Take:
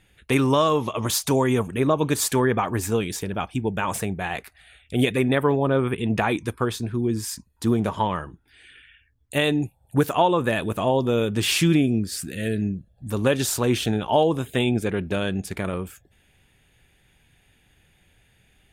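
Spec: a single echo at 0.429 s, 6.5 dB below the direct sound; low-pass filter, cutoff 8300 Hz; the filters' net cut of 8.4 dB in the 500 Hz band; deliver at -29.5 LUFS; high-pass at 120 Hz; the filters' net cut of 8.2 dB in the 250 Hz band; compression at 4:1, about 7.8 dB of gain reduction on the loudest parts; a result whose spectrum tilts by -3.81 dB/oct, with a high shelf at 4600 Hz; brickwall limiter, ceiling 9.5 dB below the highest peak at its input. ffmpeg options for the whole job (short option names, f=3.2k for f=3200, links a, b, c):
-af "highpass=120,lowpass=8.3k,equalizer=f=250:t=o:g=-7.5,equalizer=f=500:t=o:g=-8.5,highshelf=f=4.6k:g=5.5,acompressor=threshold=-28dB:ratio=4,alimiter=limit=-22.5dB:level=0:latency=1,aecho=1:1:429:0.473,volume=4dB"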